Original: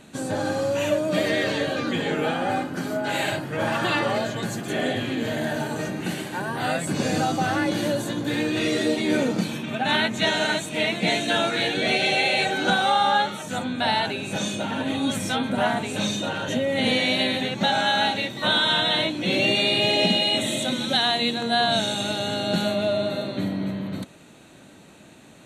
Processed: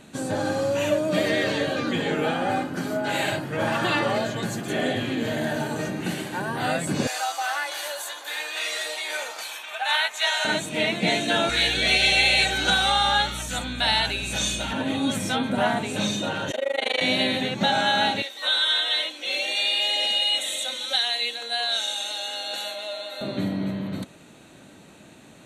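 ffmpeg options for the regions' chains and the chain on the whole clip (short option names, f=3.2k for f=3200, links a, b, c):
-filter_complex "[0:a]asettb=1/sr,asplit=3[a][b][c];[a]atrim=end=7.074[d];[b]atrim=start=7.07:end=10.45,asetpts=PTS-STARTPTS,afade=t=in:d=0.004:c=qsin,afade=t=out:st=3.376:d=0.004:c=qsin,highpass=f=750:w=0.5412,highpass=f=750:w=1.3066,highshelf=f=11k:g=10.5[e];[c]atrim=start=10.446[f];[d][e]acrossfade=d=0.004:c1=hsin:c2=qsin[g];[g][f]acrossfade=d=0.004:c1=qsin:c2=hsin,asettb=1/sr,asplit=3[h][i][j];[h]atrim=end=11.494[k];[i]atrim=start=11.49:end=14.73,asetpts=PTS-STARTPTS,afade=t=in:d=0.004:c=qsin,afade=t=out:st=3.236:d=0.004:c=qsin,tiltshelf=f=1.4k:g=-7,aeval=exprs='val(0)+0.0178*(sin(2*PI*60*n/s)+sin(2*PI*2*60*n/s)/2+sin(2*PI*3*60*n/s)/3+sin(2*PI*4*60*n/s)/4+sin(2*PI*5*60*n/s)/5)':c=same[l];[j]atrim=start=14.726[m];[k][l]acrossfade=d=0.004:c1=hsin:c2=qsin[n];[n][m]acrossfade=d=0.004:c1=qsin:c2=hsin,asettb=1/sr,asplit=3[o][p][q];[o]atrim=end=16.514[r];[p]atrim=start=16.51:end=17.01,asetpts=PTS-STARTPTS,afade=t=in:d=0.004:c=qsin,afade=t=out:st=0.496:d=0.004:c=qsin,highpass=f=400:w=0.5412,highpass=f=400:w=1.3066,equalizer=f=990:w=0.45:g=4.5,tremolo=f=25:d=1[s];[q]atrim=start=17.006[t];[r][s]acrossfade=d=0.004:c1=hsin:c2=qsin[u];[u][t]acrossfade=d=0.004:c1=qsin:c2=hsin,asettb=1/sr,asplit=3[v][w][x];[v]atrim=end=18.224[y];[w]atrim=start=18.22:end=23.21,asetpts=PTS-STARTPTS,afade=t=in:d=0.004:c=qsin,afade=t=out:st=4.986:d=0.004:c=qsin,highpass=f=480:w=0.5412,highpass=f=480:w=1.3066,equalizer=f=670:t=o:w=2.9:g=-9,aecho=1:1:3.8:0.56,atrim=end_sample=220059[z];[x]atrim=start=23.206[aa];[y][z]acrossfade=d=0.004:c1=hsin:c2=qsin[ab];[ab][aa]acrossfade=d=0.004:c1=qsin:c2=hsin"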